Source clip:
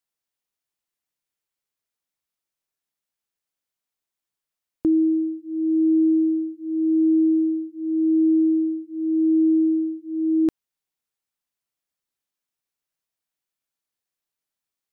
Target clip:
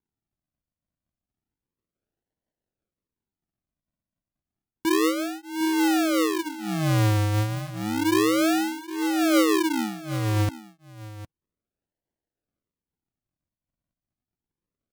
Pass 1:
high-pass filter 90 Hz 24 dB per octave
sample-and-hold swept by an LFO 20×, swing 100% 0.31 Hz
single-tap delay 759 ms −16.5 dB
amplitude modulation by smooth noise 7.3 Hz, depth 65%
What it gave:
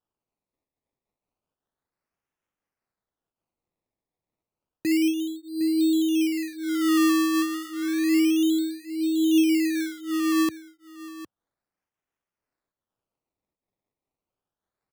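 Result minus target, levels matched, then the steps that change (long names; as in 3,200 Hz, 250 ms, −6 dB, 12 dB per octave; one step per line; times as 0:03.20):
sample-and-hold swept by an LFO: distortion −21 dB
change: sample-and-hold swept by an LFO 70×, swing 100% 0.31 Hz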